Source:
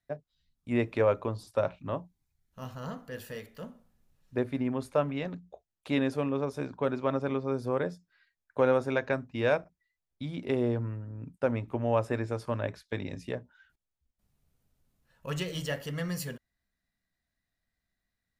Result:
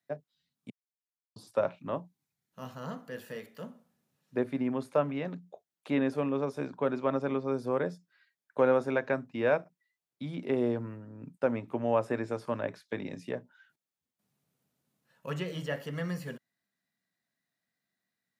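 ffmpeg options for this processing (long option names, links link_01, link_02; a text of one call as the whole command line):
ffmpeg -i in.wav -filter_complex "[0:a]asplit=3[link_01][link_02][link_03];[link_01]atrim=end=0.7,asetpts=PTS-STARTPTS,afade=type=out:start_time=0.696:duration=0.004:curve=hsin[link_04];[link_02]atrim=start=0.7:end=1.36,asetpts=PTS-STARTPTS,volume=0[link_05];[link_03]atrim=start=1.36,asetpts=PTS-STARTPTS,afade=type=in:duration=0.004:curve=hsin[link_06];[link_04][link_05][link_06]concat=n=3:v=0:a=1,highpass=frequency=140:width=0.5412,highpass=frequency=140:width=1.3066,acrossover=split=2600[link_07][link_08];[link_08]acompressor=threshold=-52dB:ratio=4:attack=1:release=60[link_09];[link_07][link_09]amix=inputs=2:normalize=0" out.wav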